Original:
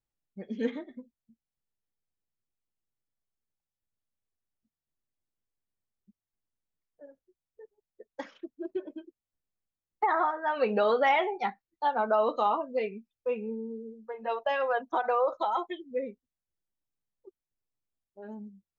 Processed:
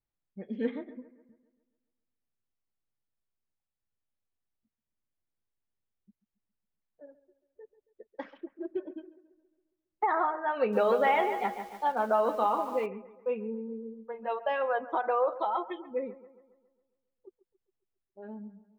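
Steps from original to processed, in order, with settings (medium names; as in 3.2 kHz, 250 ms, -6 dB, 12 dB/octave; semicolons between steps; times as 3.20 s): distance through air 270 m; bucket-brigade echo 137 ms, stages 2048, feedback 51%, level -17 dB; 10.58–12.86 s: bit-crushed delay 147 ms, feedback 55%, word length 8-bit, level -10 dB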